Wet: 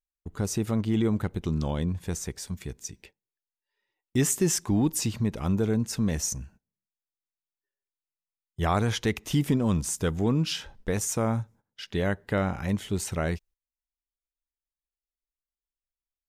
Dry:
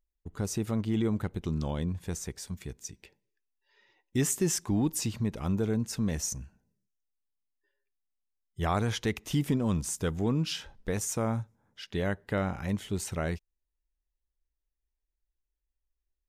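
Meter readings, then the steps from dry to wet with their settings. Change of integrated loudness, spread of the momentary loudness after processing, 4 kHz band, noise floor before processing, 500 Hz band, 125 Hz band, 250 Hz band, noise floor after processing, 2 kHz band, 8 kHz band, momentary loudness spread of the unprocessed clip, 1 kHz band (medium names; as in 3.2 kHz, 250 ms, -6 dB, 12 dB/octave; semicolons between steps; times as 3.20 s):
+3.5 dB, 12 LU, +3.5 dB, under -85 dBFS, +3.5 dB, +3.5 dB, +3.5 dB, under -85 dBFS, +3.5 dB, +3.5 dB, 12 LU, +3.5 dB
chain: gate -55 dBFS, range -19 dB; trim +3.5 dB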